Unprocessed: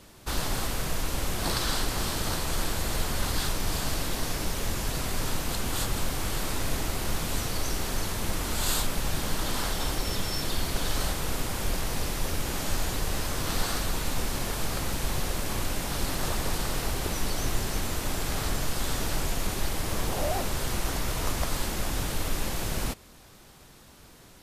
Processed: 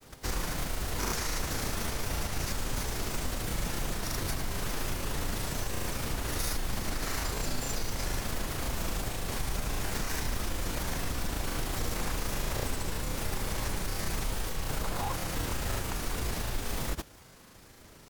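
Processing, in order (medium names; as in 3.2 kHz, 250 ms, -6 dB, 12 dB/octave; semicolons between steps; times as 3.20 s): compression, threshold -26 dBFS, peak gain reduction 6.5 dB; granulator, pitch spread up and down by 0 st; speed mistake 33 rpm record played at 45 rpm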